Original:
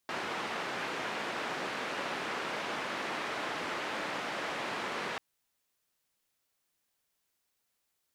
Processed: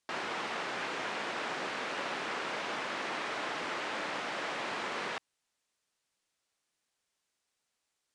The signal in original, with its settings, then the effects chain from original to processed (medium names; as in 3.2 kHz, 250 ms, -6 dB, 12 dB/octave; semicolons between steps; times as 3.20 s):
noise band 220–1900 Hz, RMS -36.5 dBFS 5.09 s
low-pass 9.4 kHz 24 dB/octave; bass shelf 170 Hz -5.5 dB